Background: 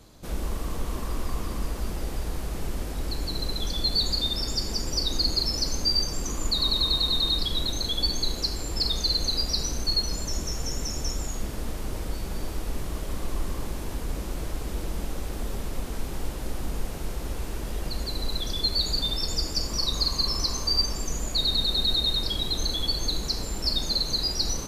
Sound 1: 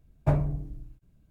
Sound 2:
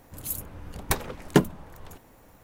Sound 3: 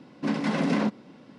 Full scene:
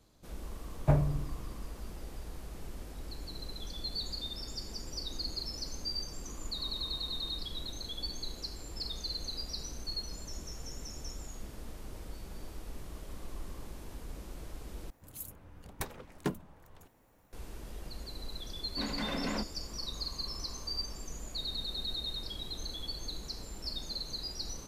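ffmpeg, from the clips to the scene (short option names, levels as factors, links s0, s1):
-filter_complex "[0:a]volume=0.224[s0];[2:a]asoftclip=type=tanh:threshold=0.251[s1];[3:a]lowshelf=f=370:g=-7.5[s2];[s0]asplit=2[s3][s4];[s3]atrim=end=14.904[s5];[s1]atrim=end=2.43,asetpts=PTS-STARTPTS,volume=0.266[s6];[s4]atrim=start=17.326[s7];[1:a]atrim=end=1.3,asetpts=PTS-STARTPTS,volume=0.794,afade=t=in:d=0.004:c=hsin,afade=t=out:st=1.296:d=0.004:c=hsin,adelay=610[s8];[s2]atrim=end=1.38,asetpts=PTS-STARTPTS,volume=0.447,afade=t=in:d=0.004:c=hsin,afade=t=out:st=1.376:d=0.004:c=hsin,adelay=18540[s9];[s5][s6]acrossfade=d=0.004:c1=hsin:c2=hsin[s10];[s10][s7]acrossfade=d=0.004:c1=hsin:c2=hsin[s11];[s11][s8][s9]amix=inputs=3:normalize=0"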